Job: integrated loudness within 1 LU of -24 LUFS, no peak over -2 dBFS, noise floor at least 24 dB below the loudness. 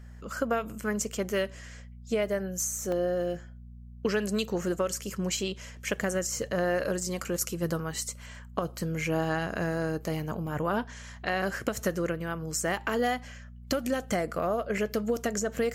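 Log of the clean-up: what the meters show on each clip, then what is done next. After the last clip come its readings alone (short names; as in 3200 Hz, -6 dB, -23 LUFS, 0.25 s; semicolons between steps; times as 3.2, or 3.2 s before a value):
dropouts 3; longest dropout 2.2 ms; hum 60 Hz; harmonics up to 240 Hz; hum level -44 dBFS; loudness -31.0 LUFS; peak -13.0 dBFS; loudness target -24.0 LUFS
-> interpolate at 2.92/10.47/14.78, 2.2 ms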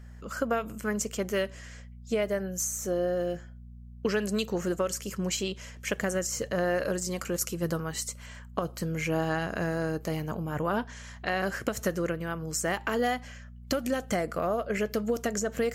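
dropouts 0; hum 60 Hz; harmonics up to 240 Hz; hum level -44 dBFS
-> de-hum 60 Hz, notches 4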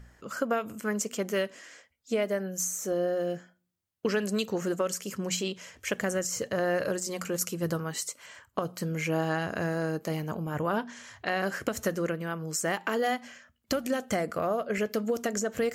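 hum none; loudness -31.0 LUFS; peak -13.5 dBFS; loudness target -24.0 LUFS
-> gain +7 dB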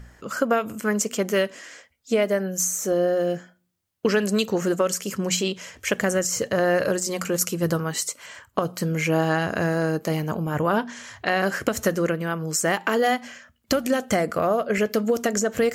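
loudness -24.0 LUFS; peak -6.5 dBFS; noise floor -67 dBFS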